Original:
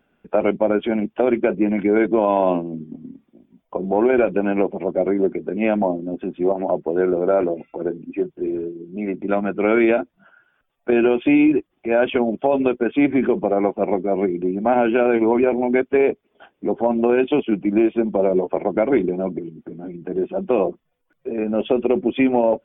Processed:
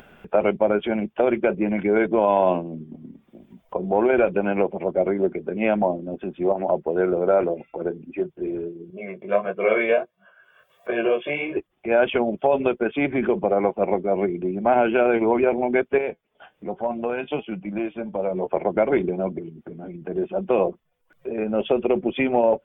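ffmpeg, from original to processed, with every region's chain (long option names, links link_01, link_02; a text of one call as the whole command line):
ffmpeg -i in.wav -filter_complex "[0:a]asettb=1/sr,asplit=3[link_01][link_02][link_03];[link_01]atrim=end=8.904[link_04];[link_02]atrim=start=8.9:end=11.57,asetpts=PTS-STARTPTS,afade=type=in:duration=0.004:curve=qsin,afade=type=out:start_time=2.666:duration=0.004:curve=qsin,flanger=delay=15.5:depth=6.3:speed=1.5,highpass=200,aecho=1:1:1.8:0.83,atrim=end_sample=117747[link_05];[link_03]atrim=start=11.566[link_06];[link_04][link_05]acrossfade=duration=0.004:curve1=hsin:curve2=qsin[link_07];[link_07][link_06]acrossfade=duration=0.004:curve1=qsin:curve2=hsin,asettb=1/sr,asplit=3[link_08][link_09][link_10];[link_08]atrim=end=15.984[link_11];[link_09]atrim=start=15.98:end=18.41,asetpts=PTS-STARTPTS,afade=type=in:duration=0.004:curve=qsin,afade=type=out:start_time=2.426:duration=0.004:curve=qsin,equalizer=frequency=370:width_type=o:width=0.42:gain=-6.5,flanger=delay=5.3:depth=1.6:regen=72:speed=1.2:shape=sinusoidal[link_12];[link_10]atrim=start=18.406[link_13];[link_11][link_12]acrossfade=duration=0.004:curve1=hsin:curve2=qsin[link_14];[link_14][link_13]acrossfade=duration=0.004:curve1=qsin:curve2=hsin,equalizer=frequency=280:width_type=o:width=0.6:gain=-8,acompressor=mode=upward:threshold=-35dB:ratio=2.5" out.wav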